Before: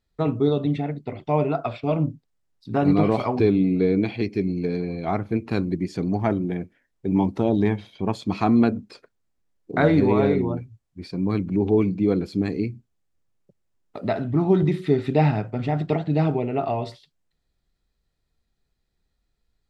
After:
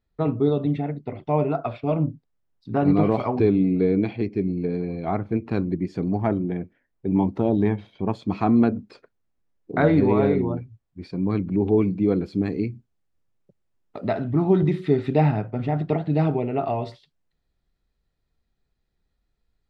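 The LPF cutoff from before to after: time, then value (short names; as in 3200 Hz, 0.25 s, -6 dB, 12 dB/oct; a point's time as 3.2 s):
LPF 6 dB/oct
2000 Hz
from 4.13 s 1200 Hz
from 4.81 s 1700 Hz
from 8.76 s 2500 Hz
from 12.59 s 3700 Hz
from 15.2 s 2000 Hz
from 16.04 s 3400 Hz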